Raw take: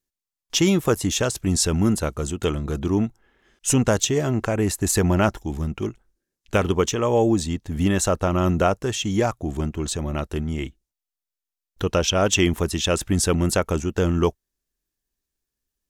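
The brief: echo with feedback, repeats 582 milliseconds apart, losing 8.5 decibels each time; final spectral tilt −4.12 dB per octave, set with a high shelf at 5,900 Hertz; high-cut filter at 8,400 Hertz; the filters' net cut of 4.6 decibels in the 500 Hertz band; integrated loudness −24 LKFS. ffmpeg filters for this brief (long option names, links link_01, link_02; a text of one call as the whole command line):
ffmpeg -i in.wav -af "lowpass=8400,equalizer=frequency=500:width_type=o:gain=-6,highshelf=frequency=5900:gain=6,aecho=1:1:582|1164|1746|2328:0.376|0.143|0.0543|0.0206,volume=-1dB" out.wav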